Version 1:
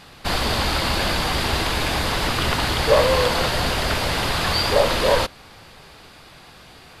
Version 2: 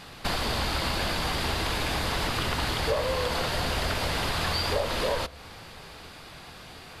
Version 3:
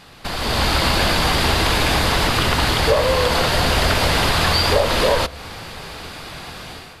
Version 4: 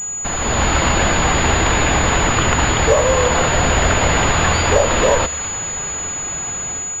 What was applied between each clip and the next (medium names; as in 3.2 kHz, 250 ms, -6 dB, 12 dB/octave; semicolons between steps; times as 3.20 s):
compression 4:1, threshold -26 dBFS, peak gain reduction 13 dB; on a send at -19.5 dB: reverberation RT60 0.60 s, pre-delay 3 ms
level rider gain up to 11.5 dB
feedback echo behind a high-pass 218 ms, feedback 75%, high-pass 1.6 kHz, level -13 dB; class-D stage that switches slowly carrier 6.9 kHz; trim +2.5 dB